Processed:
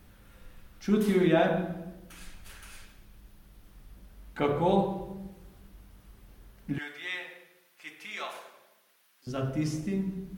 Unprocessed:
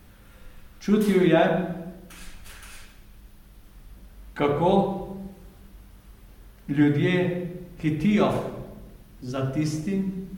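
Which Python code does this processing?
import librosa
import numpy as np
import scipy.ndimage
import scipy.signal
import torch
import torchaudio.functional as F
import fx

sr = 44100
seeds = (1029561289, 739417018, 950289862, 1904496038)

y = fx.highpass(x, sr, hz=1300.0, slope=12, at=(6.78, 9.27))
y = F.gain(torch.from_numpy(y), -4.5).numpy()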